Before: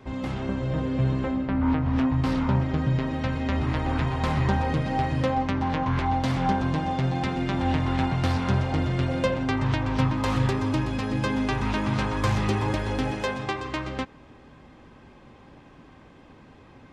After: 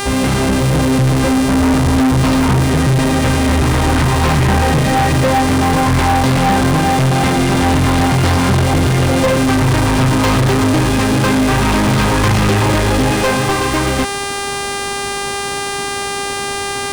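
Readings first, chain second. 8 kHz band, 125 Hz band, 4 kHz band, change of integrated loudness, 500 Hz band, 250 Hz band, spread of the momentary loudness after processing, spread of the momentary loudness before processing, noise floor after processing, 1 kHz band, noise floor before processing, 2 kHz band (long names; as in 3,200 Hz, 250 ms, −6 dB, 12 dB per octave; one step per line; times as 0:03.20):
+25.5 dB, +11.5 dB, +17.0 dB, +12.0 dB, +14.0 dB, +12.0 dB, 7 LU, 4 LU, −21 dBFS, +13.0 dB, −51 dBFS, +15.0 dB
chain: hum with harmonics 400 Hz, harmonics 26, −38 dBFS −3 dB per octave
leveller curve on the samples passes 5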